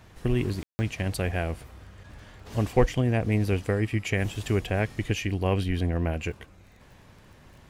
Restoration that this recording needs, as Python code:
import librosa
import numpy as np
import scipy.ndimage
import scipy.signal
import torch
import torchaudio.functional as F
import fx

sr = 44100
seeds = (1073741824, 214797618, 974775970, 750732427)

y = fx.fix_declick_ar(x, sr, threshold=6.5)
y = fx.fix_ambience(y, sr, seeds[0], print_start_s=6.45, print_end_s=6.95, start_s=0.63, end_s=0.79)